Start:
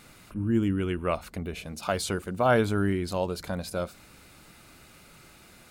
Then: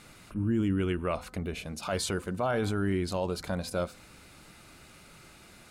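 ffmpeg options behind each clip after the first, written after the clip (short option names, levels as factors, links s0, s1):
-af "lowpass=12000,bandreject=f=254.4:t=h:w=4,bandreject=f=508.8:t=h:w=4,bandreject=f=763.2:t=h:w=4,bandreject=f=1017.6:t=h:w=4,bandreject=f=1272:t=h:w=4,bandreject=f=1526.4:t=h:w=4,bandreject=f=1780.8:t=h:w=4,alimiter=limit=0.0944:level=0:latency=1:release=13"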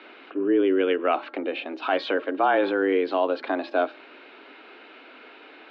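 -af "highpass=f=200:t=q:w=0.5412,highpass=f=200:t=q:w=1.307,lowpass=f=3400:t=q:w=0.5176,lowpass=f=3400:t=q:w=0.7071,lowpass=f=3400:t=q:w=1.932,afreqshift=91,volume=2.66"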